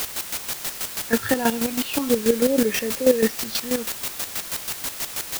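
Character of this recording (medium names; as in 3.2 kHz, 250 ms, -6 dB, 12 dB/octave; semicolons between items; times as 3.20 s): phasing stages 6, 0.43 Hz, lowest notch 480–1200 Hz; a quantiser's noise floor 6-bit, dither triangular; chopped level 6.2 Hz, depth 65%, duty 30%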